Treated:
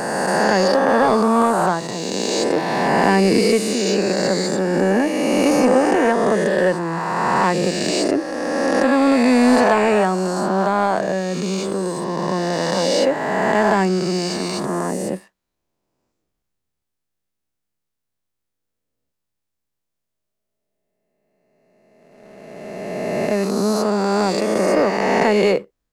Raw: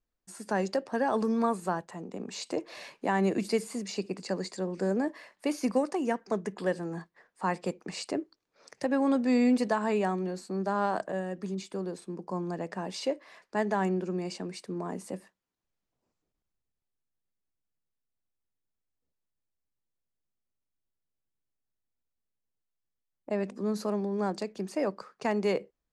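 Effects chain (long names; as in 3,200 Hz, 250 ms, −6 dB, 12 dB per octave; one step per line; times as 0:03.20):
peak hold with a rise ahead of every peak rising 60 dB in 2.67 s
leveller curve on the samples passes 1
level +6 dB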